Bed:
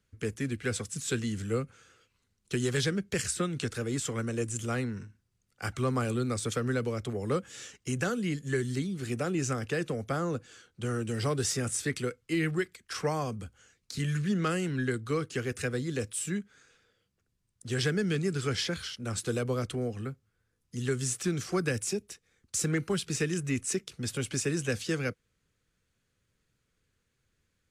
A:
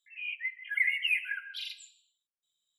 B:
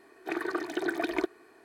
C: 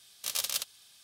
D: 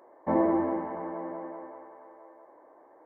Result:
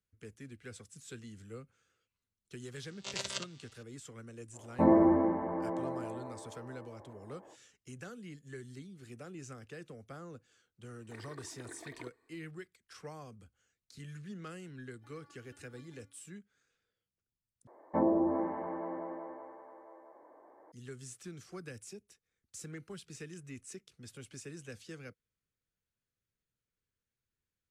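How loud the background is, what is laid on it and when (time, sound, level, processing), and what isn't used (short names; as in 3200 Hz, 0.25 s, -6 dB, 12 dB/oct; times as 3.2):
bed -16.5 dB
2.8 add C -4 dB + chord vocoder bare fifth, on C3
4.52 add D -2.5 dB, fades 0.05 s + low shelf 260 Hz +10.5 dB
10.83 add B -18 dB + ripple EQ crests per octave 1, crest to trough 9 dB
14.75 add B -13.5 dB + metallic resonator 280 Hz, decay 0.35 s, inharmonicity 0.002
17.67 replace with D -3 dB + treble ducked by the level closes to 720 Hz, closed at -21 dBFS
not used: A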